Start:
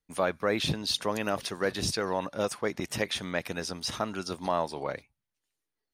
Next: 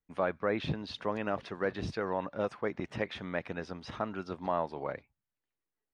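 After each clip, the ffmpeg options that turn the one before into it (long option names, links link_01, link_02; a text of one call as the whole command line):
ffmpeg -i in.wav -af "lowpass=2200,volume=-3dB" out.wav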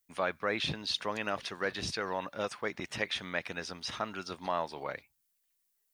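ffmpeg -i in.wav -af "crystalizer=i=10:c=0,volume=-5dB" out.wav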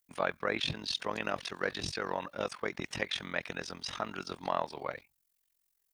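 ffmpeg -i in.wav -af "tremolo=f=44:d=0.889,volume=3.5dB" out.wav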